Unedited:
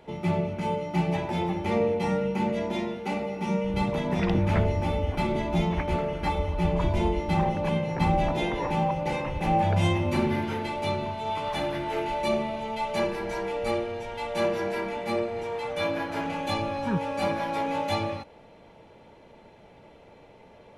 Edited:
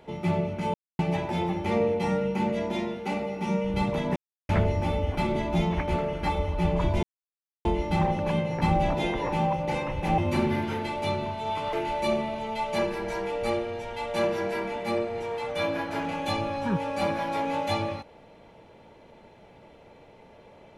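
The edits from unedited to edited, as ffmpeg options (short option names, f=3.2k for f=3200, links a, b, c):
-filter_complex "[0:a]asplit=8[a][b][c][d][e][f][g][h];[a]atrim=end=0.74,asetpts=PTS-STARTPTS,afade=t=out:st=0.736:d=0.004:c=hsin[i];[b]atrim=start=0.74:end=0.99,asetpts=PTS-STARTPTS,volume=0[j];[c]atrim=start=0.99:end=4.16,asetpts=PTS-STARTPTS,afade=t=in:d=0.004:c=hsin,afade=t=out:st=3.166:d=0.004:c=hsin[k];[d]atrim=start=4.16:end=4.49,asetpts=PTS-STARTPTS,volume=0[l];[e]atrim=start=4.49:end=7.03,asetpts=PTS-STARTPTS,afade=t=in:d=0.004:c=hsin,afade=t=out:st=2.536:d=0.004:c=hsin,apad=pad_dur=0.62[m];[f]atrim=start=7.03:end=9.562,asetpts=PTS-STARTPTS,afade=t=in:d=0.004:c=hsin[n];[g]atrim=start=9.978:end=11.532[o];[h]atrim=start=11.938[p];[i][j][k][l][m][n]concat=n=6:v=0:a=1[q];[q][o]acrossfade=d=0.004:c1=hsin:c2=hsin[r];[r][p]acrossfade=d=0.004:c1=hsin:c2=hsin"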